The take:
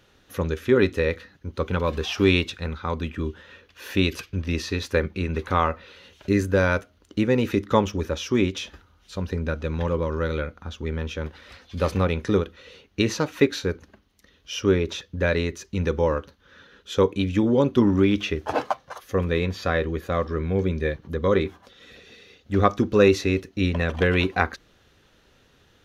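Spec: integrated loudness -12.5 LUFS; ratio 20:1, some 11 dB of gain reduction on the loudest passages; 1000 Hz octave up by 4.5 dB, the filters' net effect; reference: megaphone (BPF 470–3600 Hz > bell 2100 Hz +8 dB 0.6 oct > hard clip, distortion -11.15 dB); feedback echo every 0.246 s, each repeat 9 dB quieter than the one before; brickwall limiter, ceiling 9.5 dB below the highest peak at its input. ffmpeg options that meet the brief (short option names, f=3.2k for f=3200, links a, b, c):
-af "equalizer=f=1k:t=o:g=5,acompressor=threshold=-22dB:ratio=20,alimiter=limit=-19.5dB:level=0:latency=1,highpass=470,lowpass=3.6k,equalizer=f=2.1k:t=o:w=0.6:g=8,aecho=1:1:246|492|738|984:0.355|0.124|0.0435|0.0152,asoftclip=type=hard:threshold=-29dB,volume=23.5dB"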